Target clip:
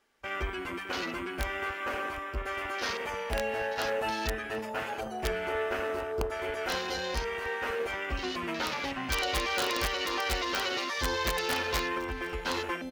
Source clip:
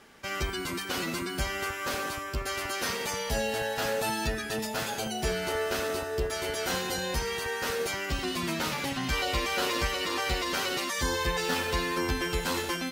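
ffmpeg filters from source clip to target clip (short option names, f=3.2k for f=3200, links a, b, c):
-filter_complex "[0:a]afwtdn=0.0141,equalizer=f=150:t=o:w=1.2:g=-11,asettb=1/sr,asplit=3[a][b][c];[a]atrim=end=11.974[d];[b]atrim=start=11.97:end=12.46,asetpts=PTS-STARTPTS,afade=t=in:d=0.004:c=qsin,afade=t=out:st=0.486:d=0.004:c=qsin,acompressor=threshold=-32dB:ratio=4[e];[c]atrim=start=12.456[f];[d][e]acrossfade=d=0.004:c1=hsin:c2=qsin[g];[g][f]acrossfade=d=0.004:c1=qsin:c2=hsin,aeval=exprs='(mod(10.6*val(0)+1,2)-1)/10.6':c=same,aecho=1:1:734:0.1"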